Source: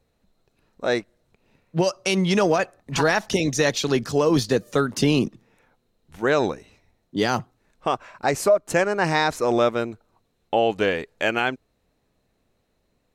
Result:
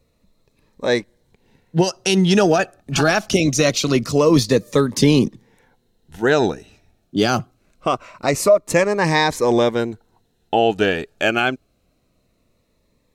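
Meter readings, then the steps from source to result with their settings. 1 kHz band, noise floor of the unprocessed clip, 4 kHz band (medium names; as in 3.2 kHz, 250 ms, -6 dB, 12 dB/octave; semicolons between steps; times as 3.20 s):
+3.0 dB, -71 dBFS, +5.0 dB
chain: Shepard-style phaser falling 0.24 Hz; trim +6 dB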